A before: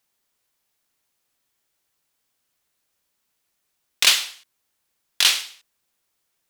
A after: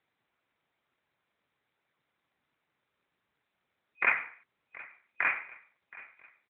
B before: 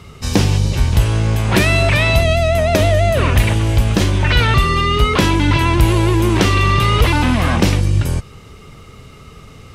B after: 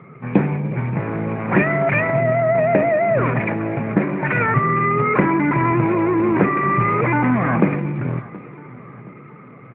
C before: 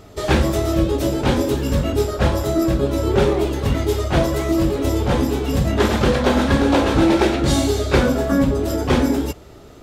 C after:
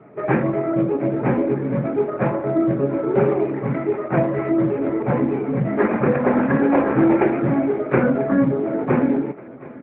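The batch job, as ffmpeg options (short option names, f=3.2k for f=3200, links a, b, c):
-af "afftfilt=real='re*between(b*sr/4096,110,2500)':imag='im*between(b*sr/4096,110,2500)':win_size=4096:overlap=0.75,aecho=1:1:723|1446|2169|2892:0.1|0.05|0.025|0.0125" -ar 8000 -c:a libopencore_amrnb -b:a 12200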